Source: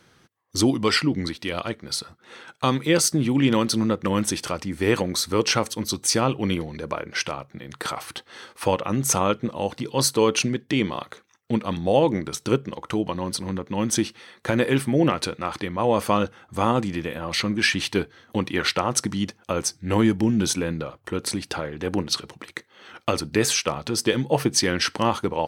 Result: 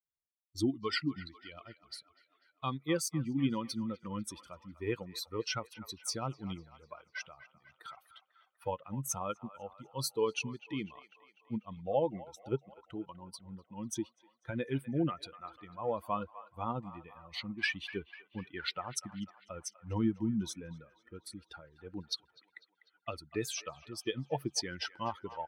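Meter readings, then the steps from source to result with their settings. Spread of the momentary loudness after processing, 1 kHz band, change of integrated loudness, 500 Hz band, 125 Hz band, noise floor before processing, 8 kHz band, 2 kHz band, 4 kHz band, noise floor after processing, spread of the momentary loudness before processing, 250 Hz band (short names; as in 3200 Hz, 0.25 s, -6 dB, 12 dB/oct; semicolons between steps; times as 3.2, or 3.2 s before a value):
17 LU, -14.0 dB, -14.0 dB, -14.5 dB, -13.5 dB, -60 dBFS, -16.5 dB, -14.0 dB, -15.0 dB, -77 dBFS, 10 LU, -14.0 dB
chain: per-bin expansion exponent 2; bell 7800 Hz -5 dB 0.64 oct; band-limited delay 0.248 s, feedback 58%, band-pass 1400 Hz, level -14 dB; gain -8.5 dB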